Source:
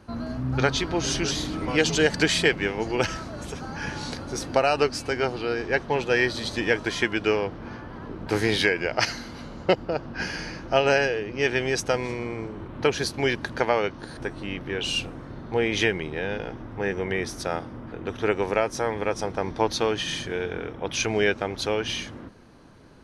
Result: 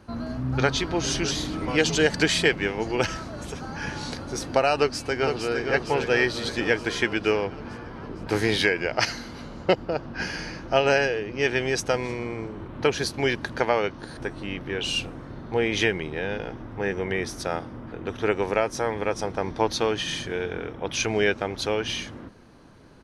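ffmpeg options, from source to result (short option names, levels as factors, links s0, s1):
-filter_complex "[0:a]asplit=2[s0][s1];[s1]afade=t=in:st=4.75:d=0.01,afade=t=out:st=5.65:d=0.01,aecho=0:1:460|920|1380|1840|2300|2760|3220|3680|4140|4600:0.501187|0.325772|0.211752|0.137639|0.0894651|0.0581523|0.037799|0.0245693|0.0159701|0.0103805[s2];[s0][s2]amix=inputs=2:normalize=0"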